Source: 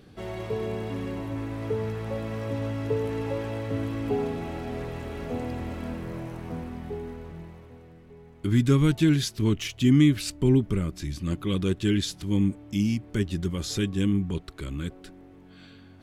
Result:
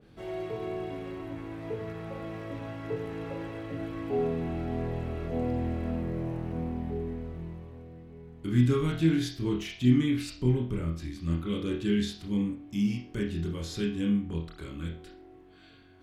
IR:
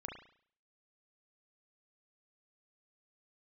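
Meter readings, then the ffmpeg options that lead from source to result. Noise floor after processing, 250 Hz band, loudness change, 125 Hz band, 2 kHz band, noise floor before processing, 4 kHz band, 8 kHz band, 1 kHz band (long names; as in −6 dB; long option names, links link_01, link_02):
−53 dBFS, −3.5 dB, −4.0 dB, −4.5 dB, −4.5 dB, −50 dBFS, −6.5 dB, −10.0 dB, −2.5 dB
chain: -filter_complex "[1:a]atrim=start_sample=2205,asetrate=61740,aresample=44100[link_01];[0:a][link_01]afir=irnorm=-1:irlink=0,adynamicequalizer=threshold=0.00224:dfrequency=3000:dqfactor=0.7:tfrequency=3000:tqfactor=0.7:attack=5:release=100:ratio=0.375:range=1.5:mode=cutabove:tftype=highshelf,volume=1dB"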